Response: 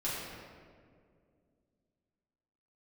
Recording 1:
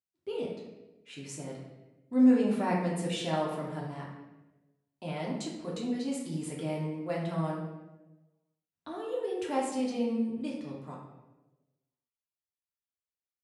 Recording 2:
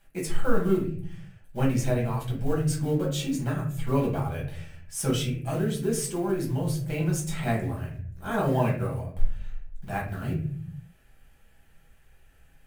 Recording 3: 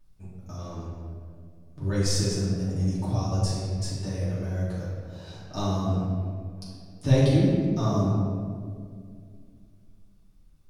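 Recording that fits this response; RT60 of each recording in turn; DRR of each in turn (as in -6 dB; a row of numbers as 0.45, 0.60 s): 3; 1.1, 0.55, 2.2 s; -4.0, -3.0, -10.0 dB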